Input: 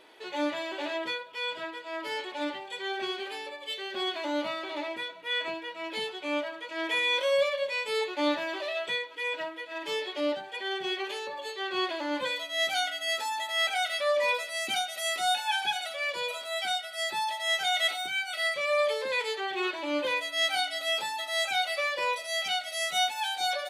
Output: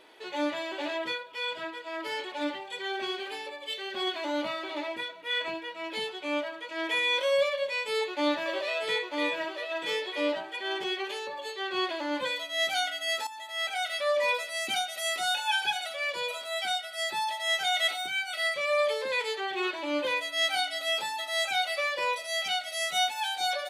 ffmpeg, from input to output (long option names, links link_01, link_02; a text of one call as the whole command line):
ffmpeg -i in.wav -filter_complex "[0:a]asplit=3[link_01][link_02][link_03];[link_01]afade=type=out:start_time=0.79:duration=0.02[link_04];[link_02]aphaser=in_gain=1:out_gain=1:delay=4:decay=0.23:speed=1.8:type=triangular,afade=type=in:start_time=0.79:duration=0.02,afade=type=out:start_time=5.6:duration=0.02[link_05];[link_03]afade=type=in:start_time=5.6:duration=0.02[link_06];[link_04][link_05][link_06]amix=inputs=3:normalize=0,asettb=1/sr,asplit=3[link_07][link_08][link_09];[link_07]atrim=end=7.514[link_10];[link_08]atrim=start=7.51:end=10.84,asetpts=PTS-STARTPTS,afade=type=in:duration=0.004:curve=qsin,afade=type=out:start_time=3.326:duration=0.004:curve=qsin,aecho=1:1:946:0.596,atrim=end_sample=146853[link_11];[link_09]atrim=start=10.836[link_12];[link_10][link_11]acrossfade=duration=0.004:curve1=hsin:curve2=qsin[link_13];[link_13][link_12]acrossfade=duration=0.004:curve1=qsin:curve2=hsin,asettb=1/sr,asplit=3[link_14][link_15][link_16];[link_14]atrim=end=15.234[link_17];[link_15]atrim=start=15.23:end=15.7,asetpts=PTS-STARTPTS,afade=type=in:duration=0.004:curve=qsin,afade=type=out:start_time=0.466:duration=0.004:curve=qsin,aecho=1:1:2:0.5,atrim=end_sample=20727[link_18];[link_16]atrim=start=15.696[link_19];[link_17][link_18]acrossfade=duration=0.004:curve1=hsin:curve2=qsin[link_20];[link_20][link_19]acrossfade=duration=0.004:curve1=qsin:curve2=hsin,asplit=2[link_21][link_22];[link_21]atrim=end=13.27,asetpts=PTS-STARTPTS,afade=type=out:start_time=13.266:duration=0.004:curve=hsin:silence=0.223872[link_23];[link_22]atrim=start=13.27,asetpts=PTS-STARTPTS,afade=type=in:duration=1.11:curve=qsin:silence=0.223872[link_24];[link_23][link_24]concat=n=2:v=0:a=1" out.wav